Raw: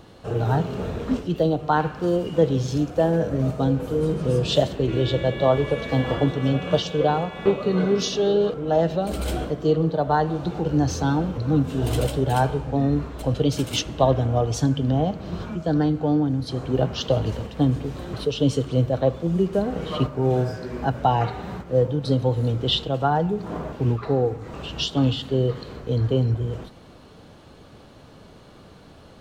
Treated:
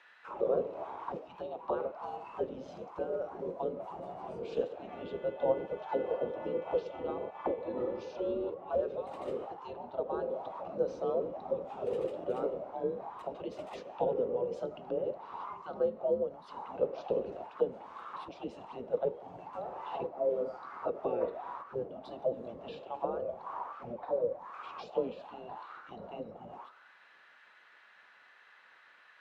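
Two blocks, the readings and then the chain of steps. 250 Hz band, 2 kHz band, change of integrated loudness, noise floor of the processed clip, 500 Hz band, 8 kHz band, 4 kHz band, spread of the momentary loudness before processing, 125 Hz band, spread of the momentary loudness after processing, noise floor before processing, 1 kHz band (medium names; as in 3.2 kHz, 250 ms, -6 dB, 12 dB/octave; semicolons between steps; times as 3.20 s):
-20.5 dB, -17.5 dB, -13.5 dB, -60 dBFS, -10.0 dB, under -30 dB, under -25 dB, 6 LU, -31.5 dB, 12 LU, -47 dBFS, -13.0 dB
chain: spectral gate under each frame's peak -10 dB weak; frequency shift -240 Hz; auto-wah 490–1900 Hz, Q 6.2, down, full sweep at -28 dBFS; trim +8.5 dB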